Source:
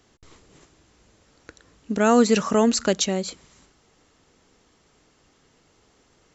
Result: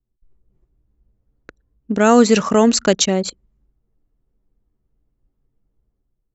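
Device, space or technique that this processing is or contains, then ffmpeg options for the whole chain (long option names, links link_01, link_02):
voice memo with heavy noise removal: -af "anlmdn=10,dynaudnorm=framelen=130:gausssize=7:maxgain=9.5dB"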